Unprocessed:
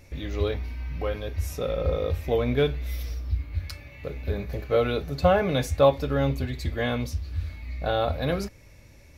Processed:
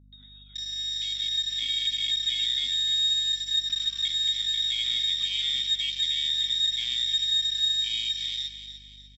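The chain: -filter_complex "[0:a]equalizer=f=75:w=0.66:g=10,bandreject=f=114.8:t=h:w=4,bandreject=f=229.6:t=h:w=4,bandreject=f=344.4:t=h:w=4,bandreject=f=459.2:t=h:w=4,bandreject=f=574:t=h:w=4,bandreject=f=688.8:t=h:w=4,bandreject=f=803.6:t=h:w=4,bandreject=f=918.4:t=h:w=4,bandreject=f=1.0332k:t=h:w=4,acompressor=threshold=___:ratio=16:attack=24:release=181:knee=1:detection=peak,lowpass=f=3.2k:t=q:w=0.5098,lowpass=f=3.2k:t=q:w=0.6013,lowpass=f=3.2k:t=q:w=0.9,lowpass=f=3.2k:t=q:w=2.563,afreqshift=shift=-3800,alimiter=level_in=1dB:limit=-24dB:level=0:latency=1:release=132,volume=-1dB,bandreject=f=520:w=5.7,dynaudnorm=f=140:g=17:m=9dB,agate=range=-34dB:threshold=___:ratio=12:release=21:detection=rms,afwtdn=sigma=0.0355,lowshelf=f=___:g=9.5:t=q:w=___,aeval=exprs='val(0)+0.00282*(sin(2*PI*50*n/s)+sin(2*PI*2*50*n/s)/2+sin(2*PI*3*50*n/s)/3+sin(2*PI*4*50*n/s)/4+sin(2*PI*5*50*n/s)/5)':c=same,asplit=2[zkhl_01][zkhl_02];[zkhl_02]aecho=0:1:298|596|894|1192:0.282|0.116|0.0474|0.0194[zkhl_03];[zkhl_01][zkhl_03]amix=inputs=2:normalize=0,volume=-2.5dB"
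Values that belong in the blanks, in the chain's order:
-30dB, -39dB, 320, 3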